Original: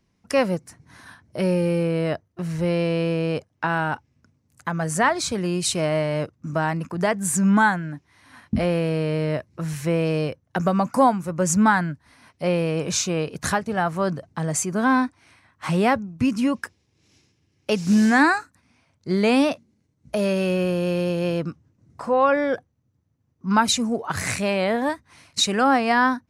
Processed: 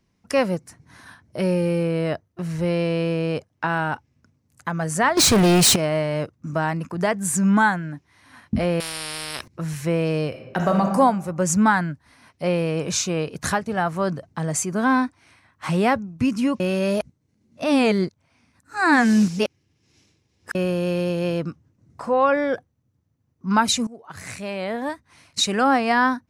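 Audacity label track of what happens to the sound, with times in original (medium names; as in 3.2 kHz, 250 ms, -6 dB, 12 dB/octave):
5.170000	5.760000	waveshaping leveller passes 5
8.800000	9.480000	spectrum-flattening compressor 10:1
10.280000	10.810000	reverb throw, RT60 1.1 s, DRR 1.5 dB
16.600000	20.550000	reverse
23.870000	25.540000	fade in, from -19.5 dB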